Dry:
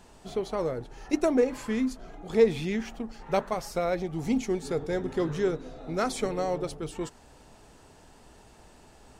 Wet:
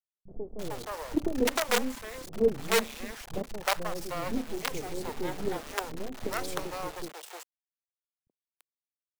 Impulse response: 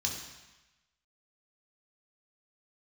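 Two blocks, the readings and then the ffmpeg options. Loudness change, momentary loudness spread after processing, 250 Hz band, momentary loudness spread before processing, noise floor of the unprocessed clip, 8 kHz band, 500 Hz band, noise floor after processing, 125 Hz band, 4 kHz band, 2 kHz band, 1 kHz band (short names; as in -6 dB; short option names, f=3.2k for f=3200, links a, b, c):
-3.0 dB, 13 LU, -5.5 dB, 12 LU, -55 dBFS, +5.0 dB, -5.0 dB, under -85 dBFS, -6.5 dB, +6.0 dB, +4.0 dB, -0.5 dB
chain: -filter_complex "[0:a]acrusher=bits=4:dc=4:mix=0:aa=0.000001,acrossover=split=170|510[a][b][c];[b]adelay=30[d];[c]adelay=340[e];[a][d][e]amix=inputs=3:normalize=0"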